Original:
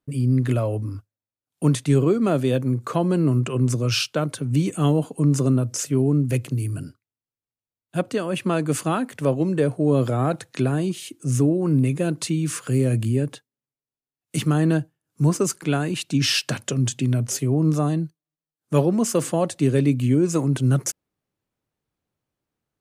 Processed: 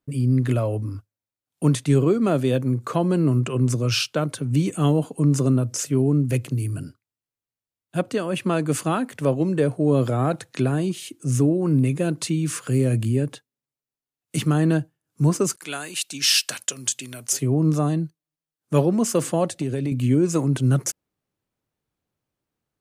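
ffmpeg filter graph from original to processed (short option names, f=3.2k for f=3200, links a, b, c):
-filter_complex "[0:a]asettb=1/sr,asplit=3[a][b][c];[a]atrim=end=15.564[d];[b]atrim=start=15.56:end=17.33,asetpts=PTS-STARTPTS,afade=t=in:d=0.004:c=qsin,afade=t=out:st=1.766:d=0.004:c=qsin,highpass=f=1.4k:p=1,aemphasis=mode=production:type=cd,agate=range=-33dB:threshold=-49dB:ratio=3:release=100:detection=peak[e];[c]atrim=start=17.326[f];[d][e]acrossfade=d=0.004:c1=hsin:c2=qsin[g];[g][f]acrossfade=d=0.004:c1=qsin:c2=hsin,asettb=1/sr,asplit=3[h][i][j];[h]atrim=end=19.514[k];[i]atrim=start=19.51:end=19.92,asetpts=PTS-STARTPTS,afade=t=in:d=0.004:c=qsin,afade=t=out:st=0.406:d=0.004:c=qsin,equalizer=f=1k:t=o:w=0.3:g=-14.5,acompressor=threshold=-21dB:ratio=5:attack=3.2:release=140:knee=1:detection=peak[l];[j]atrim=start=19.916[m];[k][l]acrossfade=d=0.004:c1=hsin:c2=qsin[n];[n][m]acrossfade=d=0.004:c1=qsin:c2=hsin"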